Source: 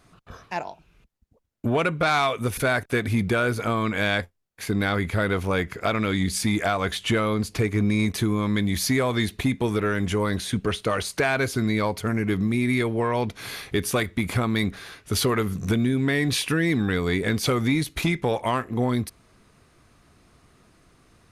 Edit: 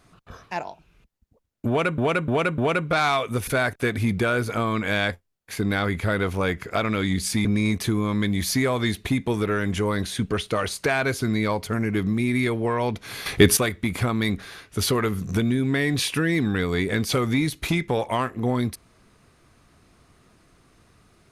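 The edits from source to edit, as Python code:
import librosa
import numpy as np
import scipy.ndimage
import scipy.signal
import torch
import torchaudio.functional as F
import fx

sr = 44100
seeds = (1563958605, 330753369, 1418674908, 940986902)

y = fx.edit(x, sr, fx.repeat(start_s=1.68, length_s=0.3, count=4),
    fx.cut(start_s=6.55, length_s=1.24),
    fx.clip_gain(start_s=13.6, length_s=0.31, db=10.0), tone=tone)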